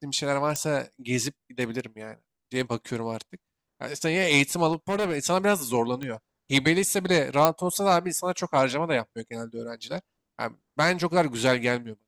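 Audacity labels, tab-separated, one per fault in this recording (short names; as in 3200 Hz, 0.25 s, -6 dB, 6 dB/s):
0.560000	0.560000	pop -12 dBFS
4.720000	5.140000	clipped -21.5 dBFS
6.030000	6.030000	pop -20 dBFS
7.450000	7.450000	pop -4 dBFS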